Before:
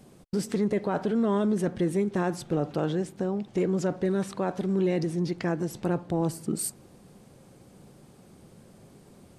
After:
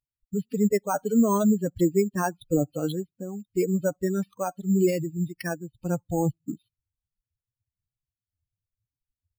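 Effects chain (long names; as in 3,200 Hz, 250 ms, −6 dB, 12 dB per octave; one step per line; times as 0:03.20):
spectral dynamics exaggerated over time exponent 3
0:05.17–0:05.80: Chebyshev low-pass with heavy ripple 5,400 Hz, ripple 3 dB
bad sample-rate conversion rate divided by 6×, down filtered, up hold
level +9 dB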